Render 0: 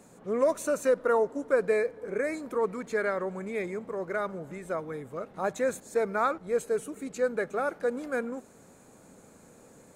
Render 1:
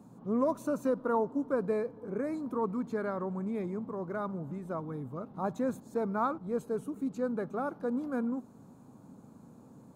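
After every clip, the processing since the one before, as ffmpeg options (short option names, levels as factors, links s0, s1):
-af "equalizer=f=125:t=o:w=1:g=11,equalizer=f=250:t=o:w=1:g=10,equalizer=f=500:t=o:w=1:g=-4,equalizer=f=1000:t=o:w=1:g=9,equalizer=f=2000:t=o:w=1:g=-12,equalizer=f=8000:t=o:w=1:g=-9,volume=0.473"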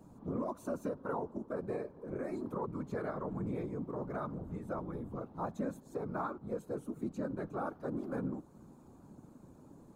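-af "afftfilt=real='hypot(re,im)*cos(2*PI*random(0))':imag='hypot(re,im)*sin(2*PI*random(1))':win_size=512:overlap=0.75,alimiter=level_in=2.24:limit=0.0631:level=0:latency=1:release=296,volume=0.447,volume=1.5"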